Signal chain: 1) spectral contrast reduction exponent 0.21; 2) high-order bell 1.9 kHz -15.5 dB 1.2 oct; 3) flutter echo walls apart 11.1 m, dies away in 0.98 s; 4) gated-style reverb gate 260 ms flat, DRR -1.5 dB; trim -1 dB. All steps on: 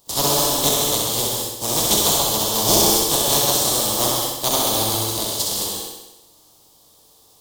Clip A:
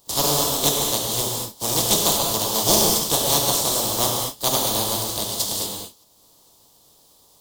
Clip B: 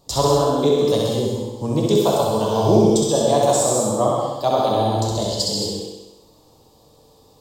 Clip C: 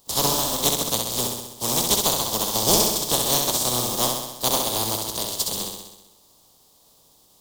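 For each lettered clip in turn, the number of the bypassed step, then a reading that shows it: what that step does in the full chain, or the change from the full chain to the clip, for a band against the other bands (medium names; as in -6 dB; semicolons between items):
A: 3, echo-to-direct 4.5 dB to 1.5 dB; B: 1, 8 kHz band -13.5 dB; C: 4, echo-to-direct 4.5 dB to -1.5 dB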